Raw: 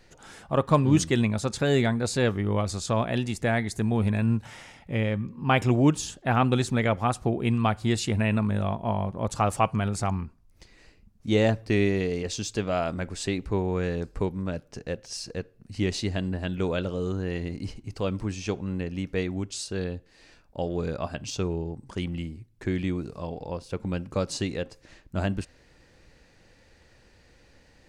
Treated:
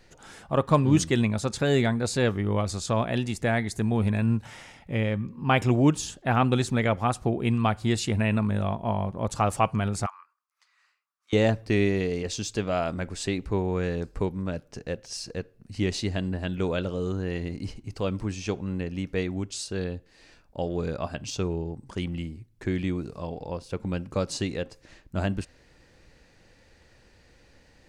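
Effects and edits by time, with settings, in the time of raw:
10.06–11.33 s: ladder high-pass 1.1 kHz, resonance 70%

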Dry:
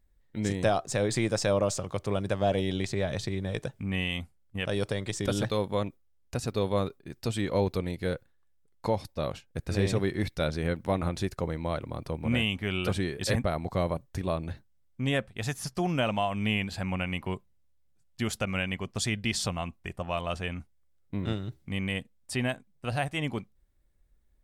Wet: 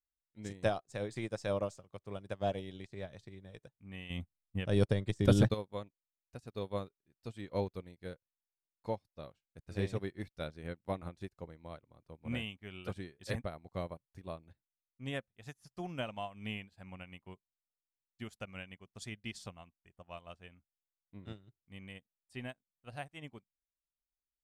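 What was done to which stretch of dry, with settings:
4.10–5.54 s: bass shelf 390 Hz +10 dB
whole clip: upward expansion 2.5:1, over -42 dBFS; trim -1 dB

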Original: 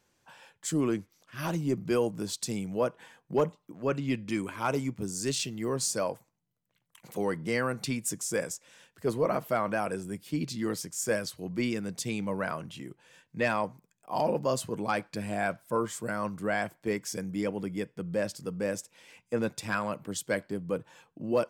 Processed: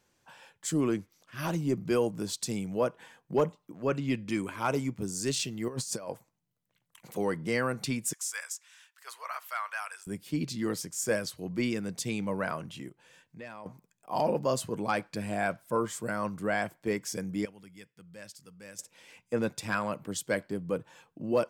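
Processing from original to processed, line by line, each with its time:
5.68–6.11 s: compressor with a negative ratio -35 dBFS, ratio -0.5
8.13–10.07 s: high-pass 1.1 kHz 24 dB/octave
12.89–13.66 s: compression 2:1, threshold -54 dBFS
17.45–18.79 s: amplifier tone stack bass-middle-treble 5-5-5

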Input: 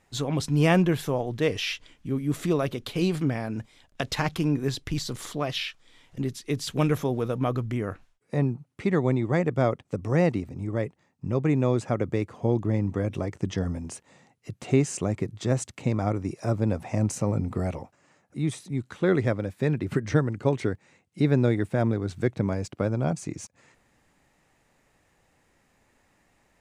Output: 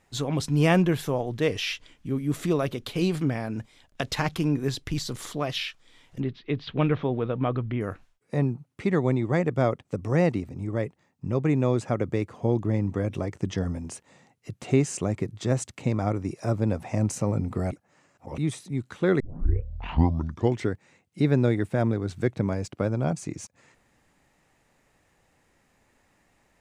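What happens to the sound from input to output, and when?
6.20–7.81 s: steep low-pass 3.8 kHz
17.72–18.38 s: reverse
19.20 s: tape start 1.48 s

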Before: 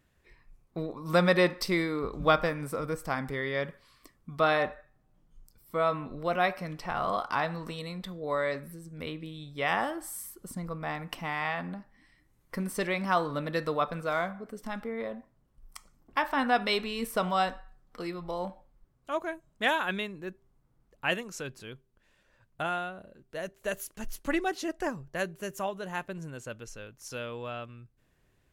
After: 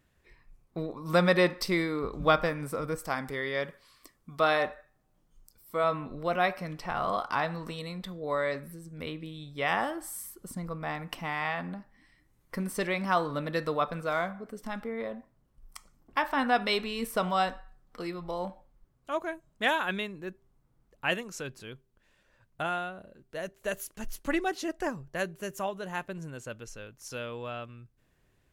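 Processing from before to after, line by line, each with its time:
2.98–5.84 s: tone controls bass -5 dB, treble +4 dB

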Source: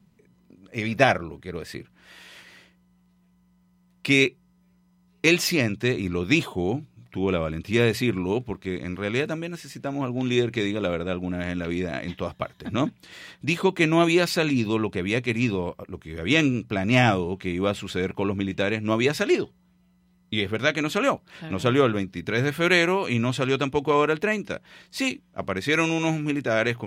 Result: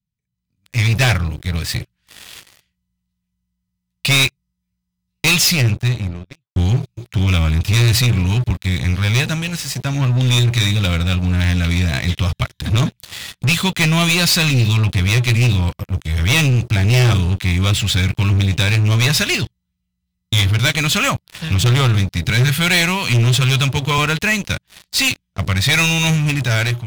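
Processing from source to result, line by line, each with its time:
5.25–6.56 s: studio fade out
22.29–23.98 s: high-pass 91 Hz 24 dB/octave
whole clip: FFT filter 110 Hz 0 dB, 370 Hz -28 dB, 3.7 kHz -4 dB; waveshaping leveller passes 5; level rider gain up to 11 dB; trim -5.5 dB

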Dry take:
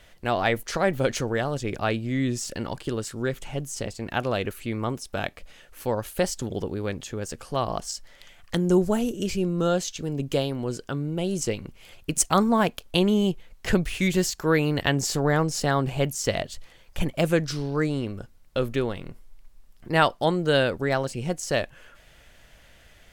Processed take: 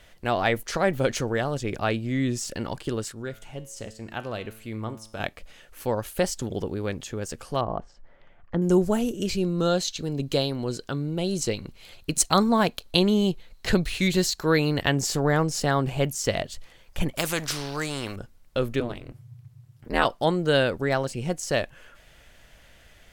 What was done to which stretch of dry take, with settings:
3.12–5.20 s: feedback comb 110 Hz, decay 0.66 s
7.61–8.62 s: low-pass 1.2 kHz
9.29–14.77 s: peaking EQ 4.1 kHz +12 dB 0.22 oct
17.16–18.16 s: spectrum-flattening compressor 2:1
18.80–20.05 s: ring modulator 120 Hz

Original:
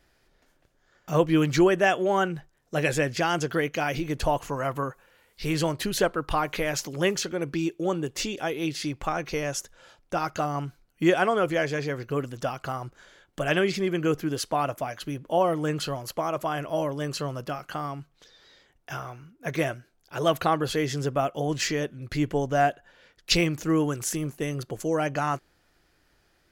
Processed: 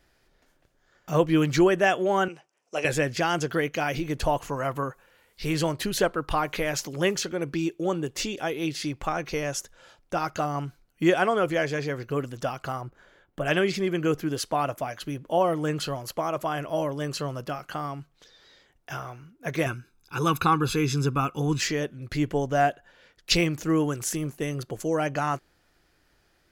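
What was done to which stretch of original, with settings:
2.28–2.85 s: cabinet simulation 430–9800 Hz, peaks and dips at 1.7 kHz -9 dB, 2.6 kHz +7 dB, 3.8 kHz -10 dB, 5.7 kHz +5 dB
12.81–13.45 s: peaking EQ 6.7 kHz -12 dB 2.5 oct
19.66–21.60 s: comb 0.8 ms, depth 93%

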